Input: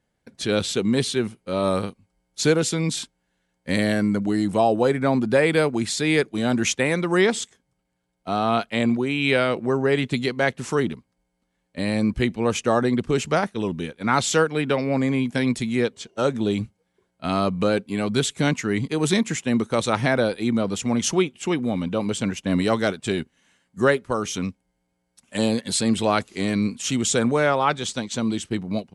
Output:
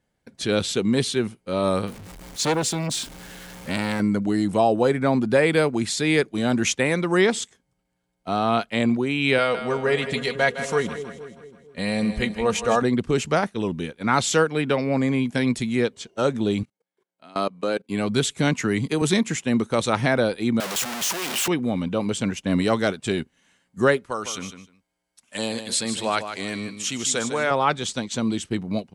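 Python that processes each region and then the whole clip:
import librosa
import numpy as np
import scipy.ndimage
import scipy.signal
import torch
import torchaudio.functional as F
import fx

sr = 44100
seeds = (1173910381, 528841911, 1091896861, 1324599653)

y = fx.chain(x, sr, fx.zero_step(step_db=-34.5),
    fx.transformer_sat(knee_hz=1200.0), at=(1.87, 4.0))
y = fx.chain(y, sr, fx.peak_eq(hz=270.0, db=-11.5, octaves=0.54),
    fx.comb(ms=4.2, depth=0.51),
    fx.echo_split(split_hz=570.0, low_ms=228, high_ms=160, feedback_pct=52, wet_db=-10.0), at=(9.38, 12.82))
y = fx.chain(y, sr, fx.highpass(hz=270.0, slope=12),
    fx.level_steps(step_db=23), at=(16.63, 17.9))
y = fx.chain(y, sr, fx.high_shelf(hz=9900.0, db=9.5),
    fx.band_squash(depth_pct=70), at=(18.6, 19.02))
y = fx.chain(y, sr, fx.clip_1bit(),
    fx.highpass(hz=820.0, slope=6), at=(20.6, 21.48))
y = fx.chain(y, sr, fx.low_shelf(hz=470.0, db=-11.0),
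    fx.echo_feedback(ms=153, feedback_pct=16, wet_db=-9.5), at=(24.06, 27.51))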